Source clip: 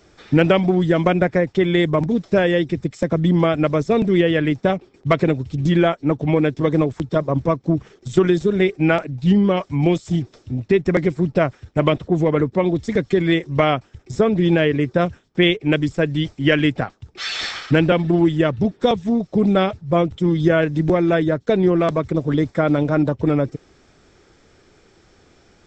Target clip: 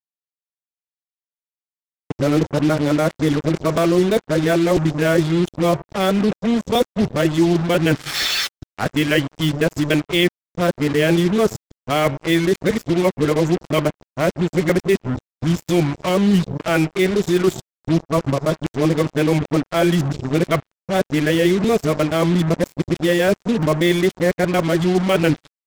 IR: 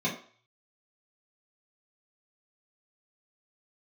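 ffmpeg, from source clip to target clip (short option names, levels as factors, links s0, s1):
-filter_complex "[0:a]areverse,dynaudnorm=f=110:g=3:m=1.58,highshelf=f=5800:g=9.5,asplit=2[s0][s1];[1:a]atrim=start_sample=2205,asetrate=26901,aresample=44100[s2];[s1][s2]afir=irnorm=-1:irlink=0,volume=0.0266[s3];[s0][s3]amix=inputs=2:normalize=0,acrusher=bits=3:mix=0:aa=0.5,asplit=2[s4][s5];[s5]acompressor=threshold=0.0631:ratio=6,volume=1[s6];[s4][s6]amix=inputs=2:normalize=0,volume=0.631"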